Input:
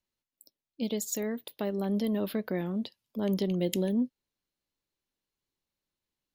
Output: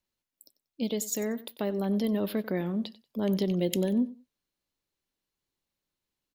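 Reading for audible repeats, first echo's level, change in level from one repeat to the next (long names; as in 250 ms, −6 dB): 2, −17.5 dB, −14.0 dB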